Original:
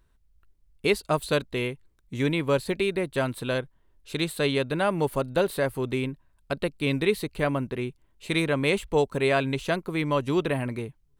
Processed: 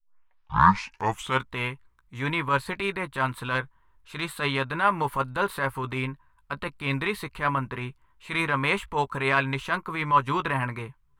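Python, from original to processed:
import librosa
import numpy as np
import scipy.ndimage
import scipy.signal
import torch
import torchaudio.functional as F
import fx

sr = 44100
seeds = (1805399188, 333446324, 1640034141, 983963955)

y = fx.tape_start_head(x, sr, length_s=1.52)
y = fx.curve_eq(y, sr, hz=(120.0, 320.0, 700.0, 1000.0, 4700.0), db=(0, -6, -3, 14, -3))
y = fx.transient(y, sr, attack_db=-8, sustain_db=-1)
y = fx.doubler(y, sr, ms=15.0, db=-11)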